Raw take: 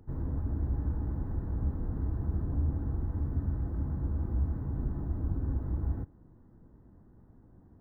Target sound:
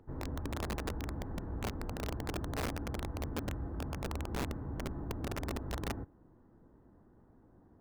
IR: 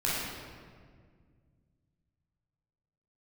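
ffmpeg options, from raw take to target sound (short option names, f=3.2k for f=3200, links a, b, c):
-af "bass=f=250:g=-9,treble=f=4k:g=-9,aeval=exprs='(mod(39.8*val(0)+1,2)-1)/39.8':c=same,volume=1.5dB"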